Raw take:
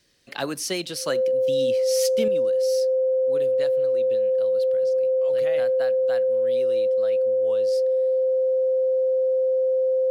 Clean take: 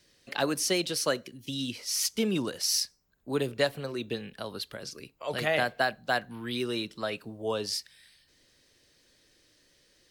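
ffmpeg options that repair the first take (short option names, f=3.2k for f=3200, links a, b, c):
-af "bandreject=f=520:w=30,asetnsamples=n=441:p=0,asendcmd='2.28 volume volume 9.5dB',volume=0dB"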